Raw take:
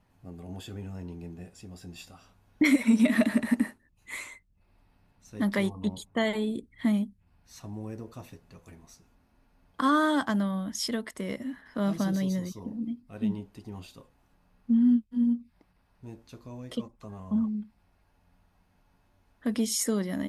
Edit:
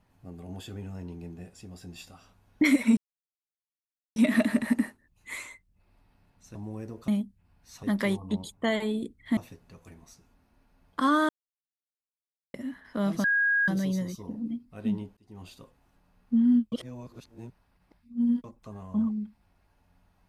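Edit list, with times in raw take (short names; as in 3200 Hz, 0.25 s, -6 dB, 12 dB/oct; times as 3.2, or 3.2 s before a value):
2.97 insert silence 1.19 s
5.36–6.9 swap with 7.65–8.18
10.1–11.35 mute
12.05 add tone 1640 Hz -21 dBFS 0.44 s
13.54–13.88 fade in
15.09–16.81 reverse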